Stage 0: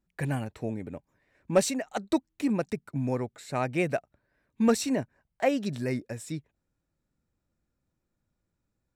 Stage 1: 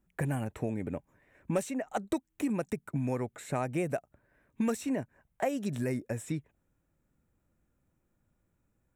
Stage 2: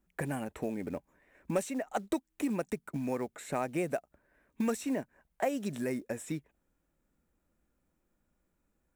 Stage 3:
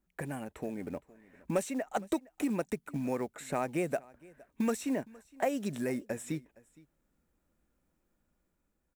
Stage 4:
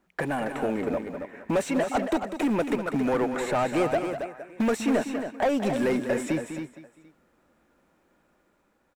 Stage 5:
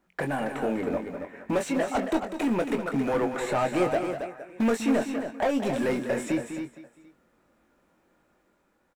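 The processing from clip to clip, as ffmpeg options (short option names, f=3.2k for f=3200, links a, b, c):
-filter_complex "[0:a]equalizer=f=4.6k:t=o:w=0.66:g=-13.5,acrossover=split=1500|4600[a][b][c];[a]acompressor=threshold=-35dB:ratio=4[d];[b]acompressor=threshold=-54dB:ratio=4[e];[c]acompressor=threshold=-51dB:ratio=4[f];[d][e][f]amix=inputs=3:normalize=0,volume=5dB"
-af "equalizer=f=110:w=2.1:g=-14,acrusher=bits=7:mode=log:mix=0:aa=0.000001"
-af "aecho=1:1:464:0.0668,dynaudnorm=f=150:g=13:m=4dB,volume=-3.5dB"
-filter_complex "[0:a]asplit=2[a][b];[b]highpass=f=720:p=1,volume=24dB,asoftclip=type=tanh:threshold=-17dB[c];[a][c]amix=inputs=2:normalize=0,lowpass=f=1.4k:p=1,volume=-6dB,asplit=2[d][e];[e]aecho=0:1:198.3|274.1:0.316|0.398[f];[d][f]amix=inputs=2:normalize=0,volume=2dB"
-filter_complex "[0:a]asplit=2[a][b];[b]adelay=22,volume=-7dB[c];[a][c]amix=inputs=2:normalize=0,volume=-1.5dB"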